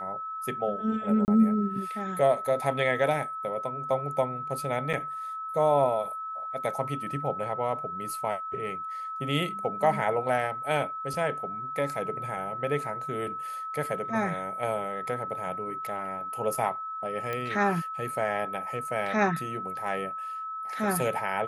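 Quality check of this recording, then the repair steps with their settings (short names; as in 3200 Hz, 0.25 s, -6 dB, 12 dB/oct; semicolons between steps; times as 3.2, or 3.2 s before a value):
tone 1300 Hz -33 dBFS
1.25–1.28 gap 29 ms
4.93–4.94 gap 6.1 ms
17.33 pop -19 dBFS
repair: de-click; notch 1300 Hz, Q 30; interpolate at 1.25, 29 ms; interpolate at 4.93, 6.1 ms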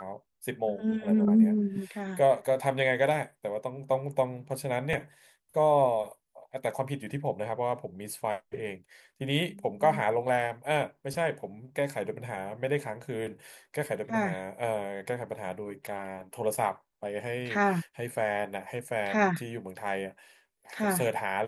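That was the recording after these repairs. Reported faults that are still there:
none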